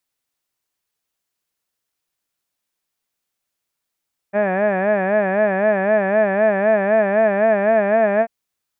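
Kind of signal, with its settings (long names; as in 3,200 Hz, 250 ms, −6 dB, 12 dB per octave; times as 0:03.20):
vowel by formant synthesis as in had, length 3.94 s, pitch 196 Hz, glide +1.5 semitones, vibrato 3.9 Hz, vibrato depth 1.2 semitones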